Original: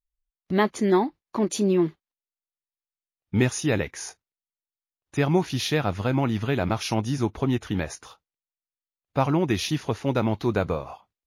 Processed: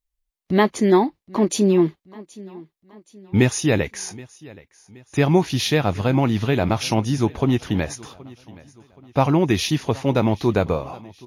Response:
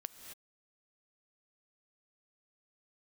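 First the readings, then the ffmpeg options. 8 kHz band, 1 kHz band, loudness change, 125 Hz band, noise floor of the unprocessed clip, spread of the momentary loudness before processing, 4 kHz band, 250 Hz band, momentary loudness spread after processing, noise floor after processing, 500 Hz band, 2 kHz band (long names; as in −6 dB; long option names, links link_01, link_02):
+5.0 dB, +4.5 dB, +5.0 dB, +5.0 dB, below −85 dBFS, 9 LU, +5.0 dB, +5.0 dB, 15 LU, −80 dBFS, +5.0 dB, +4.0 dB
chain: -af "equalizer=frequency=1400:width_type=o:width=0.47:gain=-4,aecho=1:1:774|1548|2322:0.0794|0.0357|0.0161,volume=5dB"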